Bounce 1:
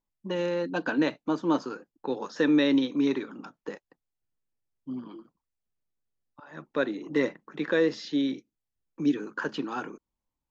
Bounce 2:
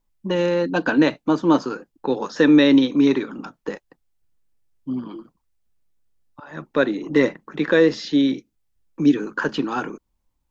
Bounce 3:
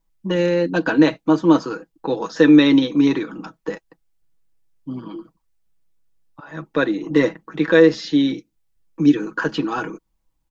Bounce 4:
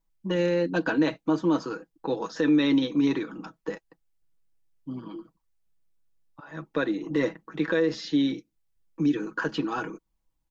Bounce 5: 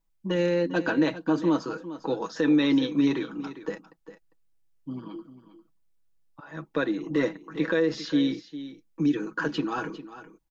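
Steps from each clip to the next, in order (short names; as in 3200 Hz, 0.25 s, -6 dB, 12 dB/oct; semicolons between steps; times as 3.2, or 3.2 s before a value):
low shelf 85 Hz +10 dB; gain +8 dB
comb 6.2 ms, depth 54%
limiter -9 dBFS, peak gain reduction 7.5 dB; gain -6 dB
echo 0.401 s -14 dB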